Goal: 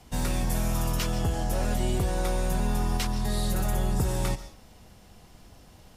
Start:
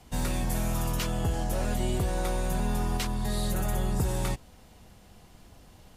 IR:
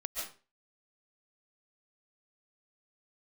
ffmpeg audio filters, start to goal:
-filter_complex "[0:a]asplit=2[a][b];[b]equalizer=f=5.4k:w=3.8:g=14[c];[1:a]atrim=start_sample=2205[d];[c][d]afir=irnorm=-1:irlink=0,volume=-15dB[e];[a][e]amix=inputs=2:normalize=0"

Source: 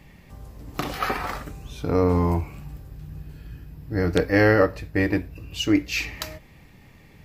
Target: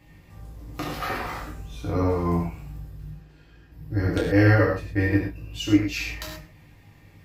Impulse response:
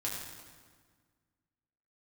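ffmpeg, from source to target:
-filter_complex "[0:a]asettb=1/sr,asplit=3[a][b][c];[a]atrim=end=3.104[d];[b]atrim=start=3.1:end=3.72,asetpts=PTS-STARTPTS,afade=t=in:d=0.004:c=qsin,afade=t=out:st=0.616:d=0.004:c=qsin,acrossover=split=320 7400:gain=0.178 1 0.141[e][f][g];[e][f][g]amix=inputs=3:normalize=0[h];[c]atrim=start=3.716[i];[d][h]acrossfade=d=0.004:c1=hsin:c2=qsin[j];[j][i]acrossfade=d=0.004:c1=qsin:c2=hsin[k];[1:a]atrim=start_sample=2205,atrim=end_sample=6174[l];[k][l]afir=irnorm=-1:irlink=0,volume=-4.5dB"

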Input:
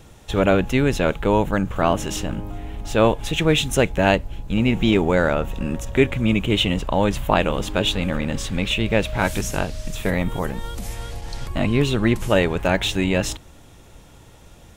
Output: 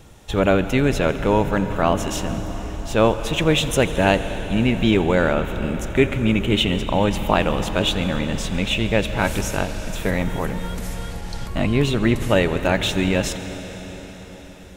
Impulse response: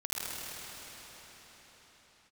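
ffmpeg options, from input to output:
-filter_complex "[0:a]asplit=2[a][b];[1:a]atrim=start_sample=2205,adelay=86[c];[b][c]afir=irnorm=-1:irlink=0,volume=-15.5dB[d];[a][d]amix=inputs=2:normalize=0"

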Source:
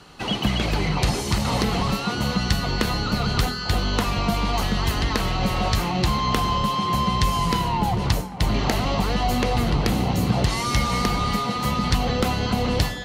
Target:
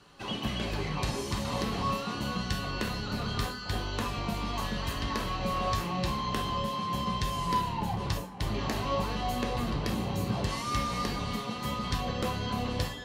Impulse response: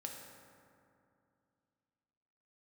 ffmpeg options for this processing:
-filter_complex "[1:a]atrim=start_sample=2205,atrim=end_sample=6615,asetrate=88200,aresample=44100[a];[0:a][a]afir=irnorm=-1:irlink=0"

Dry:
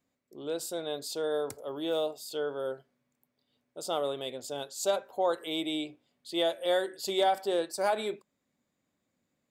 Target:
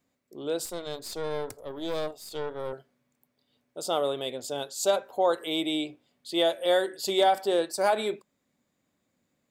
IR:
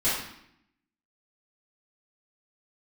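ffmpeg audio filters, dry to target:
-filter_complex "[0:a]asettb=1/sr,asplit=3[a][b][c];[a]atrim=end=0.654[d];[b]atrim=start=0.65:end=2.73,asetpts=PTS-STARTPTS,afade=t=in:d=0.004:c=qsin,afade=t=out:st=2.076:d=0.004:c=qsin,aeval=exprs='(tanh(31.6*val(0)+0.8)-tanh(0.8))/31.6':c=same[e];[c]atrim=start=2.726[f];[d][e]acrossfade=d=0.004:c1=hsin:c2=qsin[g];[g][f]acrossfade=d=0.004:c1=qsin:c2=hsin,volume=4dB"

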